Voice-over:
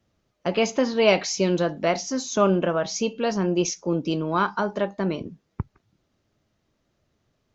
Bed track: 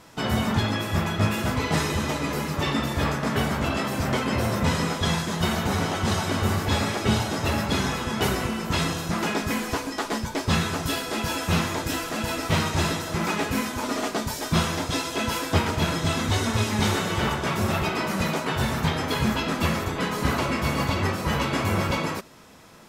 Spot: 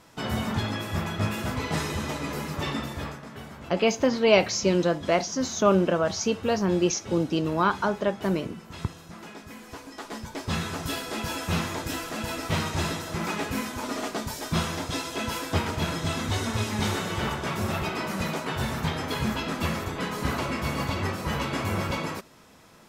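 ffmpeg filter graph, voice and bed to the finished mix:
-filter_complex "[0:a]adelay=3250,volume=0.944[s0];[1:a]volume=2.66,afade=t=out:st=2.68:d=0.59:silence=0.237137,afade=t=in:st=9.58:d=1.35:silence=0.223872[s1];[s0][s1]amix=inputs=2:normalize=0"

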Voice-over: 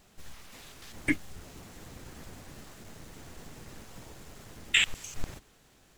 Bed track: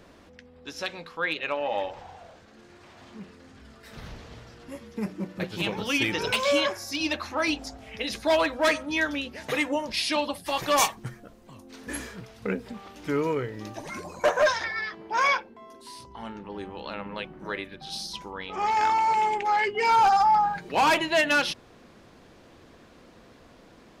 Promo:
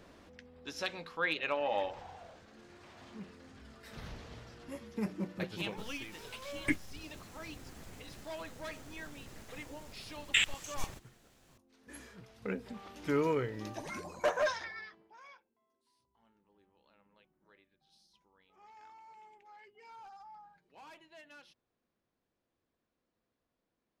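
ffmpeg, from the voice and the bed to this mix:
-filter_complex "[0:a]adelay=5600,volume=0.631[s0];[1:a]volume=4.47,afade=t=out:st=5.25:d=0.8:silence=0.141254,afade=t=in:st=11.78:d=1.3:silence=0.133352,afade=t=out:st=13.73:d=1.44:silence=0.0354813[s1];[s0][s1]amix=inputs=2:normalize=0"

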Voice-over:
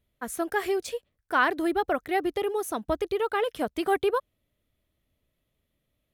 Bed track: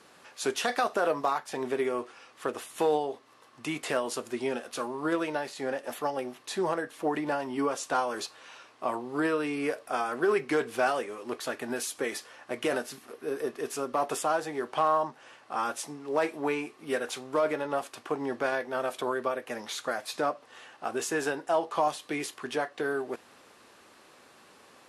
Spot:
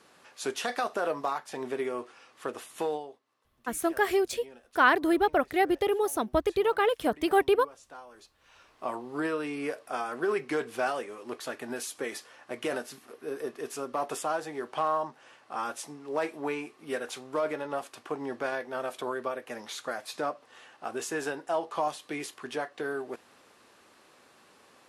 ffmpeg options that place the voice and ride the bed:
-filter_complex "[0:a]adelay=3450,volume=1.19[s0];[1:a]volume=4.47,afade=t=out:st=2.75:d=0.44:silence=0.158489,afade=t=in:st=8.38:d=0.42:silence=0.158489[s1];[s0][s1]amix=inputs=2:normalize=0"

